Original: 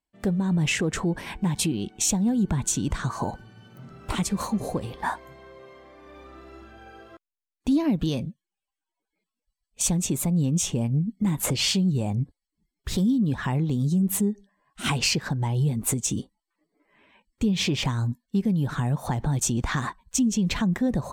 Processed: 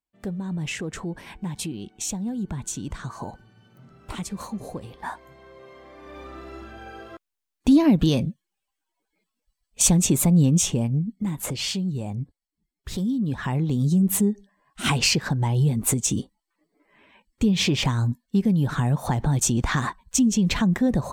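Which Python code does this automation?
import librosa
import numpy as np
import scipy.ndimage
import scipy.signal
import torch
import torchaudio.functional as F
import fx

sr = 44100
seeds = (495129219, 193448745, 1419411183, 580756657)

y = fx.gain(x, sr, db=fx.line((4.99, -6.0), (6.21, 6.0), (10.43, 6.0), (11.36, -4.0), (12.93, -4.0), (13.92, 3.0)))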